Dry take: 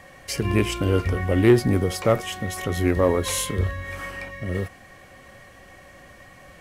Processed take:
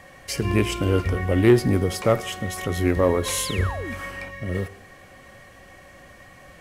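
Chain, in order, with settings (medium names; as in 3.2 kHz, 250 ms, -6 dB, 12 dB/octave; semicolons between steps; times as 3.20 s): painted sound fall, 3.44–3.94 s, 200–5700 Hz -34 dBFS; Schroeder reverb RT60 1.1 s, DRR 18 dB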